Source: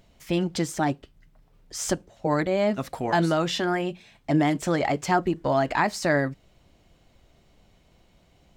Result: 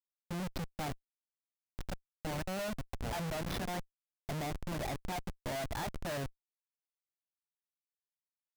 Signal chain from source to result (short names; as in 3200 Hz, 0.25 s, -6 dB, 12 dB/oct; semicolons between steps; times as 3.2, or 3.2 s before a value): fixed phaser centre 1800 Hz, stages 8; Schmitt trigger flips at -28 dBFS; gain -6.5 dB